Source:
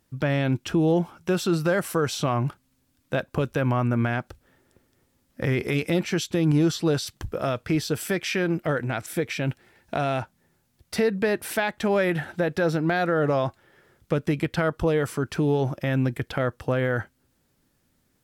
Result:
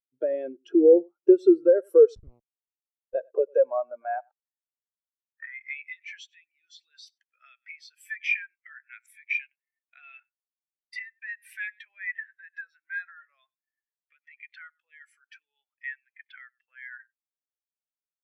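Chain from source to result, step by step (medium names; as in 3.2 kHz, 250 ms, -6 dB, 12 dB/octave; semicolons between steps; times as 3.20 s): treble shelf 2.3 kHz +7 dB; delay 96 ms -16.5 dB; compression 8:1, threshold -25 dBFS, peak gain reduction 9 dB; high-pass sweep 410 Hz -> 2 kHz, 3.15–6.12 s; 2.15–3.15 s: Schmitt trigger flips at -22.5 dBFS; spectral contrast expander 2.5:1; trim +6 dB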